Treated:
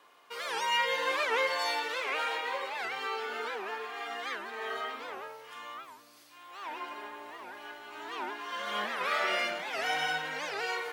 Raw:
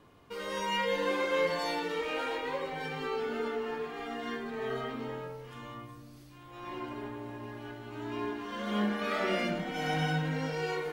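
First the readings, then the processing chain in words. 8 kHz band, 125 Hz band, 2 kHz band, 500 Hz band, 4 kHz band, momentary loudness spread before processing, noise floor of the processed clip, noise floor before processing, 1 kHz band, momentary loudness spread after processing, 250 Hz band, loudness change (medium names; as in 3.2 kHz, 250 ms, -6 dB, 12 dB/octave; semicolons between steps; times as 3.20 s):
+4.5 dB, under -20 dB, +4.5 dB, -4.0 dB, +4.5 dB, 15 LU, -58 dBFS, -52 dBFS, +2.5 dB, 16 LU, -14.5 dB, +1.0 dB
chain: high-pass 790 Hz 12 dB/octave; warped record 78 rpm, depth 250 cents; trim +4.5 dB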